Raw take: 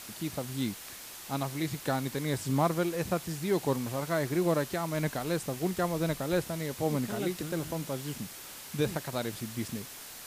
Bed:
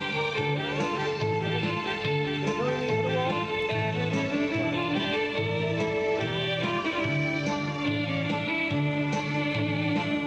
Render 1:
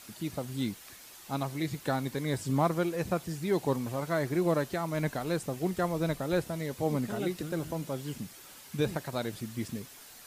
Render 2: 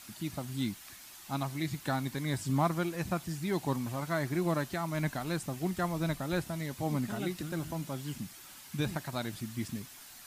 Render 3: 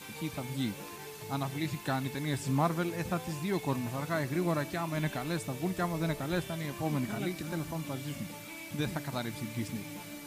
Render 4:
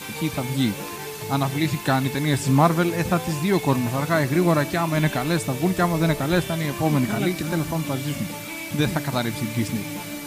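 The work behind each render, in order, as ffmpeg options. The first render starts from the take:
-af "afftdn=nr=7:nf=-46"
-af "equalizer=f=470:w=2.3:g=-10.5"
-filter_complex "[1:a]volume=-17.5dB[a];[0:a][a]amix=inputs=2:normalize=0"
-af "volume=11.5dB"

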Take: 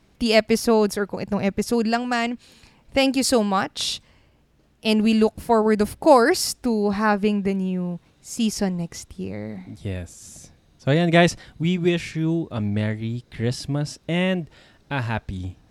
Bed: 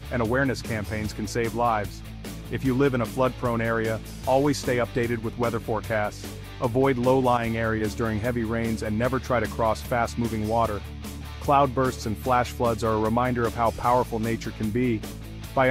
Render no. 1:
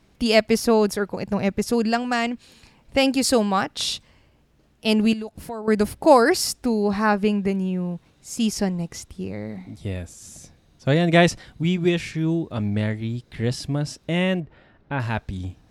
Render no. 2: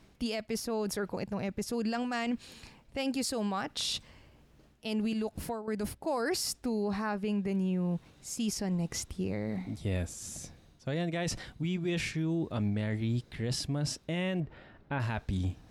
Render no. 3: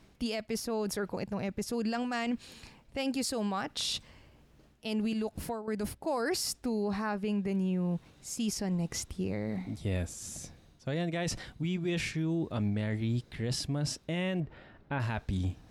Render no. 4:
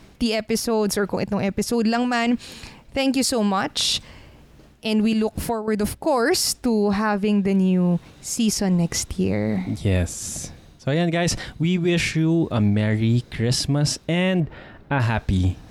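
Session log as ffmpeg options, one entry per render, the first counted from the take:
-filter_complex "[0:a]asettb=1/sr,asplit=3[a][b][c];[a]atrim=end=5.134[d];[b]atrim=start=5.13:end=5.68,asetpts=PTS-STARTPTS,afade=t=in:d=0.004:c=qsin,afade=t=out:st=0.546:d=0.004:c=qsin,acompressor=threshold=-33dB:ratio=3:attack=3.2:release=140:knee=1:detection=peak[e];[c]atrim=start=5.676[f];[d][e]acrossfade=d=0.004:c1=hsin:c2=qsin[g];[g][f]acrossfade=d=0.004:c1=qsin:c2=hsin,asettb=1/sr,asplit=3[h][i][j];[h]atrim=end=9.574[k];[i]atrim=start=9.57:end=10,asetpts=PTS-STARTPTS,afade=t=in:d=0.004:c=qsin,afade=t=out:st=0.426:d=0.004:c=qsin,bandreject=f=1.6k:w=9.6[l];[j]atrim=start=9.996[m];[k][l]acrossfade=d=0.004:c1=hsin:c2=qsin[n];[n][m]acrossfade=d=0.004:c1=qsin:c2=hsin,asettb=1/sr,asplit=3[o][p][q];[o]atrim=end=14.404[r];[p]atrim=start=14.4:end=15,asetpts=PTS-STARTPTS,afade=t=in:d=0.004:c=qsin,afade=t=out:st=0.596:d=0.004:c=qsin,lowpass=2k[s];[q]atrim=start=14.996[t];[r][s]acrossfade=d=0.004:c1=hsin:c2=qsin[u];[u][t]acrossfade=d=0.004:c1=qsin:c2=hsin"
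-af "areverse,acompressor=threshold=-27dB:ratio=6,areverse,alimiter=limit=-24dB:level=0:latency=1:release=36"
-af anull
-af "volume=12dB"

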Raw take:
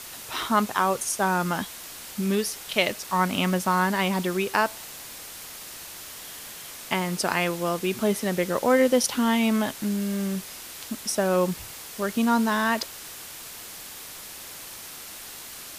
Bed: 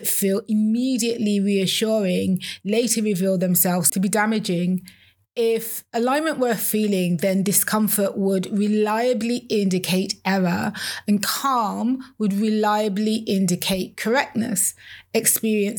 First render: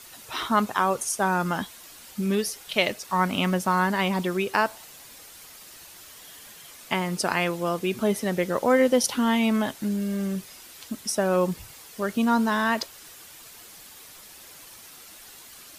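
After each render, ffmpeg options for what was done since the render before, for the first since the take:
-af "afftdn=nr=8:nf=-41"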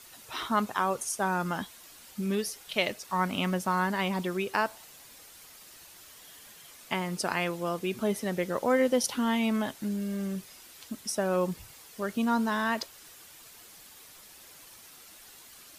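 -af "volume=-5dB"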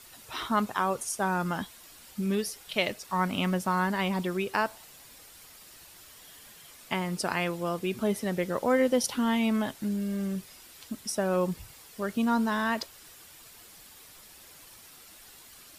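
-af "lowshelf=f=130:g=5.5,bandreject=f=6.3k:w=23"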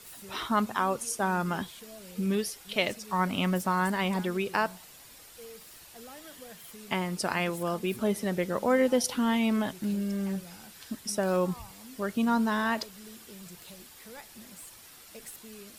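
-filter_complex "[1:a]volume=-28dB[a];[0:a][a]amix=inputs=2:normalize=0"

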